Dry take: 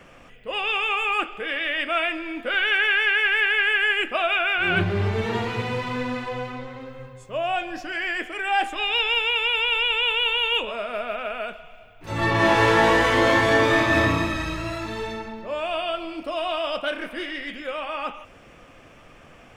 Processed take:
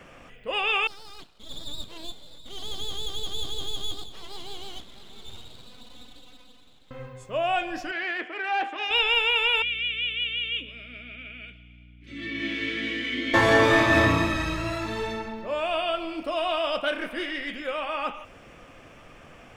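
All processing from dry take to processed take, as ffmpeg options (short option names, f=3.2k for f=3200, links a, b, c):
-filter_complex "[0:a]asettb=1/sr,asplit=3[a][b][c];[a]atrim=end=0.874[d];[b]atrim=start=0.87:end=6.91,asetpts=PTS-STARTPTS,afade=t=in:d=0.004:c=qsin,afade=t=out:st=6.036:d=0.004:c=qsin,bandpass=f=1.8k:t=q:w=12,aeval=exprs='abs(val(0))':c=same,aecho=1:1:658:0.2,atrim=end_sample=266364[e];[c]atrim=start=6.906[f];[d][e]acrossfade=d=0.004:c1=hsin:c2=qsin[g];[g][f]acrossfade=d=0.004:c1=qsin:c2=hsin,asettb=1/sr,asplit=3[h][i][j];[h]atrim=end=7.914[k];[i]atrim=start=7.91:end=8.91,asetpts=PTS-STARTPTS,afade=t=in:d=0.004:c=qsin,afade=t=out:st=0.996:d=0.004:c=qsin,aeval=exprs='(tanh(10*val(0)+0.5)-tanh(0.5))/10':c=same,highpass=230,lowpass=3.1k[l];[j]atrim=start=8.906[m];[k][l]acrossfade=d=0.004:c1=hsin:c2=qsin[n];[n][m]acrossfade=d=0.004:c1=qsin:c2=hsin,asettb=1/sr,asplit=3[o][p][q];[o]atrim=end=9.624[r];[p]atrim=start=9.62:end=13.34,asetpts=PTS-STARTPTS,afade=t=in:d=0.004:c=qsin,afade=t=out:st=3.716:d=0.004:c=qsin,asplit=3[s][t][u];[s]bandpass=f=270:t=q:w=8,volume=0dB[v];[t]bandpass=f=2.29k:t=q:w=8,volume=-6dB[w];[u]bandpass=f=3.01k:t=q:w=8,volume=-9dB[x];[v][w][x]amix=inputs=3:normalize=0,highshelf=f=2.1k:g=9.5,aeval=exprs='val(0)+0.00355*(sin(2*PI*60*n/s)+sin(2*PI*2*60*n/s)/2+sin(2*PI*3*60*n/s)/3+sin(2*PI*4*60*n/s)/4+sin(2*PI*5*60*n/s)/5)':c=same[y];[q]atrim=start=13.336[z];[r][y]acrossfade=d=0.004:c1=hsin:c2=qsin[aa];[aa][z]acrossfade=d=0.004:c1=qsin:c2=hsin"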